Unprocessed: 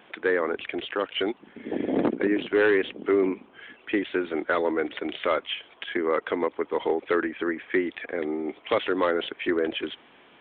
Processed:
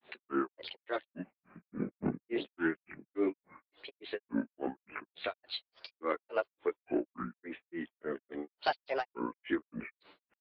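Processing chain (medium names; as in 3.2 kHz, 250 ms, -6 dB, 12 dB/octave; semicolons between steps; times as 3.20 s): chorus voices 2, 0.2 Hz, delay 15 ms, depth 2 ms; granulator 200 ms, grains 3.5 per s, pitch spread up and down by 7 st; trim -2.5 dB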